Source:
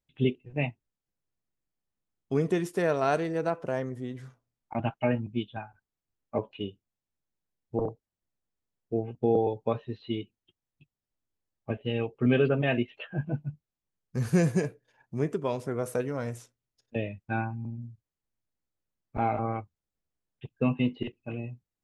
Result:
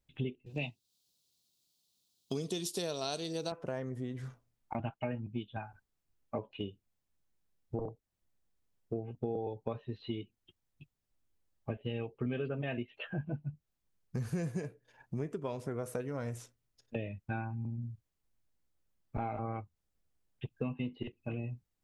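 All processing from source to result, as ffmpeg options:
-filter_complex "[0:a]asettb=1/sr,asplit=3[a][b][c];[a]atrim=end=0.464[d];[b]atrim=start=0.46:end=3.52,asetpts=PTS-STARTPTS,afade=t=in:d=0.004:c=qsin,afade=t=out:st=3.056:d=0.004:c=qsin,highpass=120,highshelf=f=2.7k:t=q:w=3:g=13.5[e];[c]atrim=start=3.516[f];[d][e]acrossfade=d=0.004:c1=hsin:c2=qsin[g];[g][f]acrossfade=d=0.004:c1=qsin:c2=hsin,lowshelf=f=80:g=7,acompressor=threshold=-39dB:ratio=4,volume=3dB"

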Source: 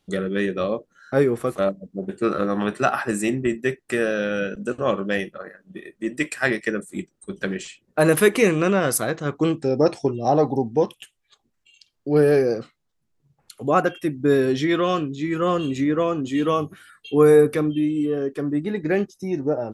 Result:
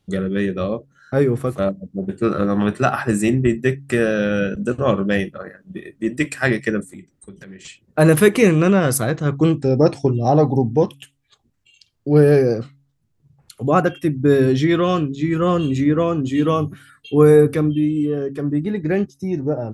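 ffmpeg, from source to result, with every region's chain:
-filter_complex "[0:a]asettb=1/sr,asplit=3[a][b][c];[a]atrim=end=6.874[d];[b]atrim=start=6.87:end=7.65,asetpts=PTS-STARTPTS,afade=t=in:d=0.004:c=qsin,afade=t=out:st=0.776:d=0.004:c=qsin,equalizer=f=2k:t=o:w=0.34:g=7,acompressor=threshold=-39dB:ratio=20:attack=3.2:release=140:knee=1:detection=peak,asoftclip=type=hard:threshold=-31.5dB[e];[c]atrim=start=7.646[f];[d][e]acrossfade=d=0.004:c1=hsin:c2=qsin[g];[g][f]acrossfade=d=0.004:c1=qsin:c2=hsin,equalizer=f=93:w=0.63:g=12.5,bandreject=f=138.6:t=h:w=4,bandreject=f=277.2:t=h:w=4,dynaudnorm=f=310:g=17:m=11.5dB,volume=-1dB"

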